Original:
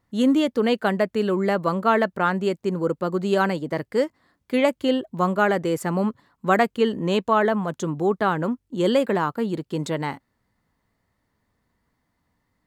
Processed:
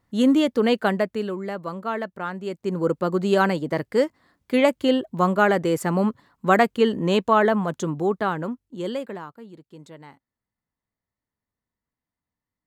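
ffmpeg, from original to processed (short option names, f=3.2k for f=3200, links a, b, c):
-af "volume=11dB,afade=t=out:st=0.83:d=0.56:silence=0.334965,afade=t=in:st=2.44:d=0.44:silence=0.316228,afade=t=out:st=7.61:d=1.02:silence=0.421697,afade=t=out:st=8.63:d=0.75:silence=0.266073"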